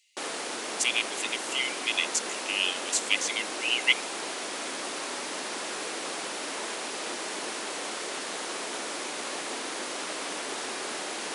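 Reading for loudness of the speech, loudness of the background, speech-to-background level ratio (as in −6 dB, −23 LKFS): −28.0 LKFS, −33.0 LKFS, 5.0 dB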